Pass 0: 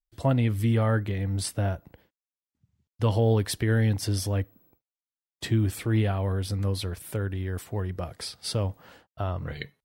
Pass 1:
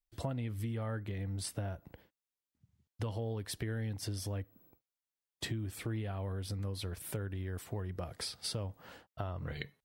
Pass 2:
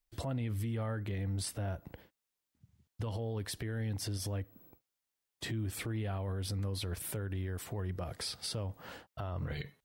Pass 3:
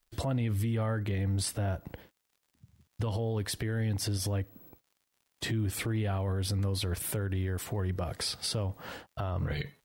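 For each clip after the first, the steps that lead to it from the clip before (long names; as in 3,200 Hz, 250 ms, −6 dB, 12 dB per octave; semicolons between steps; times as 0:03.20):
downward compressor 6 to 1, threshold −34 dBFS, peak gain reduction 15 dB; level −1.5 dB
brickwall limiter −34 dBFS, peak gain reduction 10.5 dB; level +5 dB
surface crackle 88 per second −61 dBFS; level +5.5 dB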